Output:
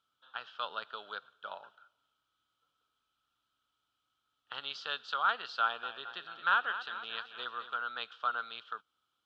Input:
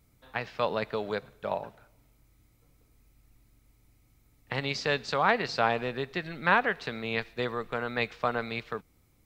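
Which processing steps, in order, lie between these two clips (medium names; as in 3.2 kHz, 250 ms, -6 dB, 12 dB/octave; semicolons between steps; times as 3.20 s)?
two resonant band-passes 2.1 kHz, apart 1.2 oct; 5.61–7.76 s: modulated delay 219 ms, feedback 61%, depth 62 cents, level -12 dB; trim +4 dB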